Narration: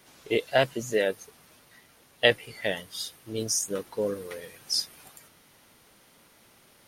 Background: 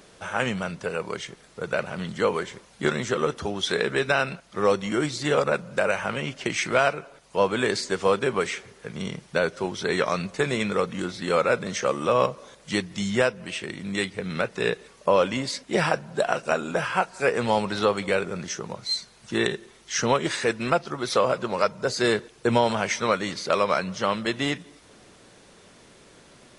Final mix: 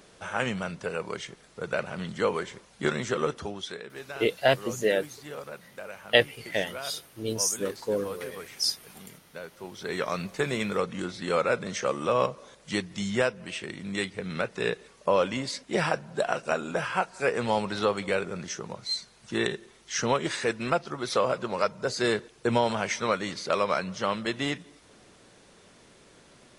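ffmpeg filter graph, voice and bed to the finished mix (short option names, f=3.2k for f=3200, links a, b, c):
-filter_complex "[0:a]adelay=3900,volume=0.5dB[a];[1:a]volume=11dB,afade=t=out:st=3.28:d=0.53:silence=0.188365,afade=t=in:st=9.51:d=0.76:silence=0.199526[b];[a][b]amix=inputs=2:normalize=0"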